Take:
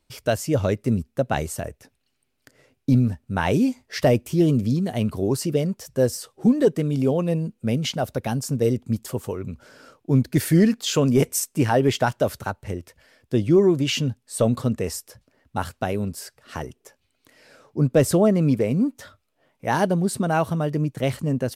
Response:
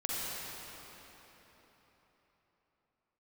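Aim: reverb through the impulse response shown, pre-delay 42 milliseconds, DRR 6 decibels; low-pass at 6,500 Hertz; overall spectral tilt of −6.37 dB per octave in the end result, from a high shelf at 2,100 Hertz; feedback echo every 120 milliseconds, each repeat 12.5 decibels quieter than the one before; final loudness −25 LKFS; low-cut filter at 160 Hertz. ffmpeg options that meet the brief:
-filter_complex "[0:a]highpass=160,lowpass=6500,highshelf=frequency=2100:gain=-7.5,aecho=1:1:120|240|360:0.237|0.0569|0.0137,asplit=2[link_01][link_02];[1:a]atrim=start_sample=2205,adelay=42[link_03];[link_02][link_03]afir=irnorm=-1:irlink=0,volume=-12dB[link_04];[link_01][link_04]amix=inputs=2:normalize=0,volume=-2dB"

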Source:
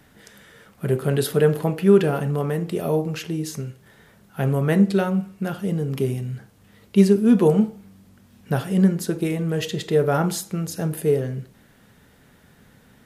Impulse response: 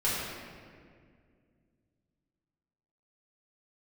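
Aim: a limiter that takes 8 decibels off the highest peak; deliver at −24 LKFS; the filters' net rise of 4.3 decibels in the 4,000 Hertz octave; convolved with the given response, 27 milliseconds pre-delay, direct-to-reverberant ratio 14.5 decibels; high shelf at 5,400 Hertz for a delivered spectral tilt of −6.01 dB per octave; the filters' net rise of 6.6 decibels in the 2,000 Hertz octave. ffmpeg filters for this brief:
-filter_complex "[0:a]equalizer=frequency=2000:width_type=o:gain=8.5,equalizer=frequency=4000:width_type=o:gain=5,highshelf=frequency=5400:gain=-6.5,alimiter=limit=-10.5dB:level=0:latency=1,asplit=2[link_01][link_02];[1:a]atrim=start_sample=2205,adelay=27[link_03];[link_02][link_03]afir=irnorm=-1:irlink=0,volume=-24.5dB[link_04];[link_01][link_04]amix=inputs=2:normalize=0,volume=-1dB"

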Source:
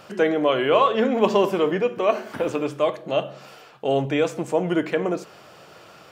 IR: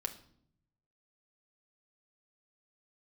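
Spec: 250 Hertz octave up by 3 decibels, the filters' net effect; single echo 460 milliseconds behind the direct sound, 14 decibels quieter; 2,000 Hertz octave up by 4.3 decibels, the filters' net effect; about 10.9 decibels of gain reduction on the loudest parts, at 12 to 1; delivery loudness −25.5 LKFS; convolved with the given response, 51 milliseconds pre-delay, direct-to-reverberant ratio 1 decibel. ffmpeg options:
-filter_complex "[0:a]equalizer=frequency=250:width_type=o:gain=4,equalizer=frequency=2000:width_type=o:gain=5.5,acompressor=threshold=-23dB:ratio=12,aecho=1:1:460:0.2,asplit=2[link_01][link_02];[1:a]atrim=start_sample=2205,adelay=51[link_03];[link_02][link_03]afir=irnorm=-1:irlink=0,volume=-1dB[link_04];[link_01][link_04]amix=inputs=2:normalize=0"

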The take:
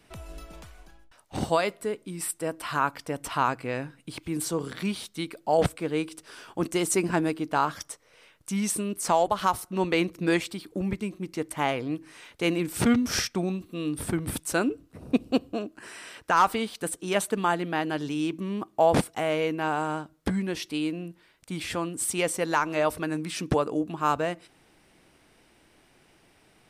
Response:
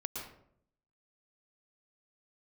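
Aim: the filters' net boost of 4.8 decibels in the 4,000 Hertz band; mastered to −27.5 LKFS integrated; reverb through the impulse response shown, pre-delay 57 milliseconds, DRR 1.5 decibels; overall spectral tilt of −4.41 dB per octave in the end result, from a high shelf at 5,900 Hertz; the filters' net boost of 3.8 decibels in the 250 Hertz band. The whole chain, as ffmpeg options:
-filter_complex "[0:a]equalizer=frequency=250:width_type=o:gain=5,equalizer=frequency=4000:width_type=o:gain=5.5,highshelf=frequency=5900:gain=3,asplit=2[link_01][link_02];[1:a]atrim=start_sample=2205,adelay=57[link_03];[link_02][link_03]afir=irnorm=-1:irlink=0,volume=-2dB[link_04];[link_01][link_04]amix=inputs=2:normalize=0,volume=-4dB"

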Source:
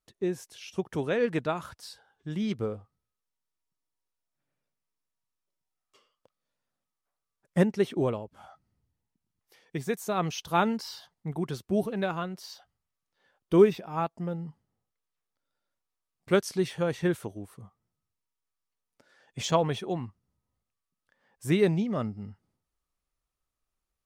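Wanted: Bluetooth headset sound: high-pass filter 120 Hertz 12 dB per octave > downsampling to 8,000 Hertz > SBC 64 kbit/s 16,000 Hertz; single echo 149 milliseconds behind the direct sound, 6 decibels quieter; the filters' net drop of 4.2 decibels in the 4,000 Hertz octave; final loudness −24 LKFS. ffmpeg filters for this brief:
ffmpeg -i in.wav -af "highpass=120,equalizer=frequency=4000:width_type=o:gain=-5.5,aecho=1:1:149:0.501,aresample=8000,aresample=44100,volume=5dB" -ar 16000 -c:a sbc -b:a 64k out.sbc

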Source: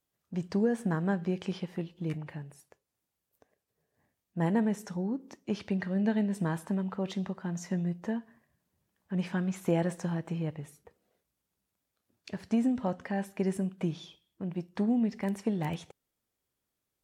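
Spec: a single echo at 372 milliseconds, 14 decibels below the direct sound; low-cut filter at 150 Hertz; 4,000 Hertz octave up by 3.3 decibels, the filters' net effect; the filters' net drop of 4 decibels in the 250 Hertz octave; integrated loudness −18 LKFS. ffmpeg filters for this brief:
ffmpeg -i in.wav -af "highpass=150,equalizer=frequency=250:width_type=o:gain=-4,equalizer=frequency=4000:width_type=o:gain=4.5,aecho=1:1:372:0.2,volume=17.5dB" out.wav

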